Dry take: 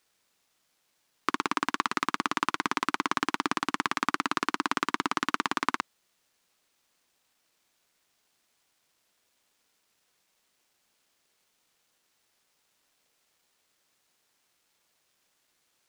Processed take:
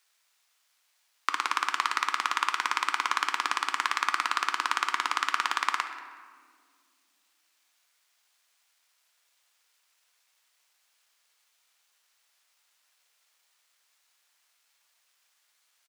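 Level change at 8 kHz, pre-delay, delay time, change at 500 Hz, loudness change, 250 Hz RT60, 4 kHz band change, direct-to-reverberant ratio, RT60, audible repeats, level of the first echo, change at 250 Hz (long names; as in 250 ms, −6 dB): +2.5 dB, 3 ms, 185 ms, −10.0 dB, +1.5 dB, 3.0 s, +3.0 dB, 6.0 dB, 2.0 s, 1, −18.5 dB, −18.5 dB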